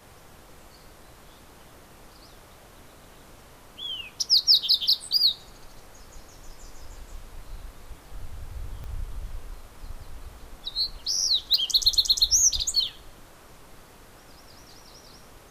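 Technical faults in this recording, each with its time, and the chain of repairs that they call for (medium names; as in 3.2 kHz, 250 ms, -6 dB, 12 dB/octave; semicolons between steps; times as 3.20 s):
8.84 s: pop -27 dBFS
11.54 s: pop -9 dBFS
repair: de-click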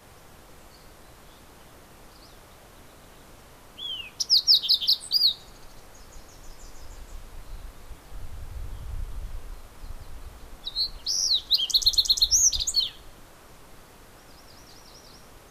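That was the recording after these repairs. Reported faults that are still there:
8.84 s: pop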